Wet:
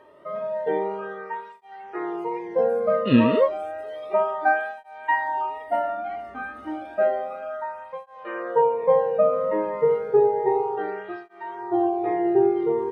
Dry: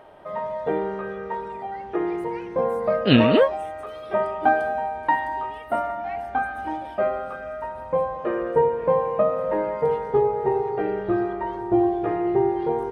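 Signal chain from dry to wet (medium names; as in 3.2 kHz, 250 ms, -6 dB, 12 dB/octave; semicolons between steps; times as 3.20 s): wow and flutter 15 cents; harmonic-percussive split percussive -17 dB; cancelling through-zero flanger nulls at 0.31 Hz, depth 1.4 ms; trim +3 dB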